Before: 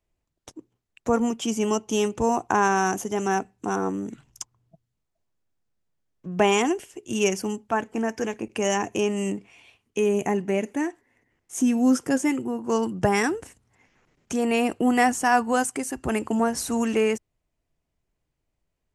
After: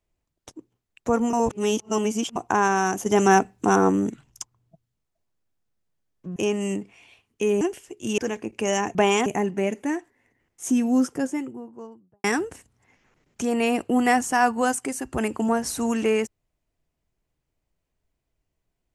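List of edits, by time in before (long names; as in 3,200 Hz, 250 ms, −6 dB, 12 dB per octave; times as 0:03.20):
0:01.33–0:02.36: reverse
0:03.06–0:04.10: clip gain +7.5 dB
0:06.36–0:06.67: swap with 0:08.92–0:10.17
0:07.24–0:08.15: remove
0:11.57–0:13.15: fade out and dull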